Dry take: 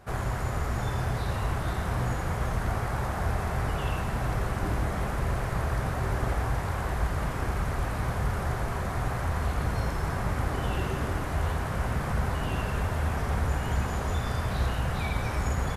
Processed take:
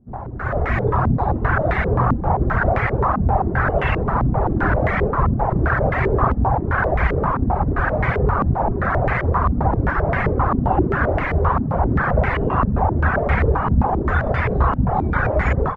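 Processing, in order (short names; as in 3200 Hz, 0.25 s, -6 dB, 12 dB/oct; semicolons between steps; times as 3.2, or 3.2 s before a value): notches 50/100 Hz; reverb removal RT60 0.87 s; AGC gain up to 14.5 dB; stepped low-pass 7.6 Hz 240–2100 Hz; gain -2.5 dB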